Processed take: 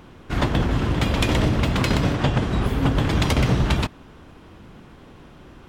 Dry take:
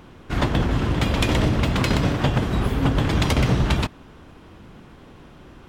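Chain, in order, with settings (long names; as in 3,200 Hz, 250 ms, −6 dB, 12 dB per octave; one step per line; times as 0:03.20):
0:02.15–0:02.66: low-pass filter 9,800 Hz 12 dB per octave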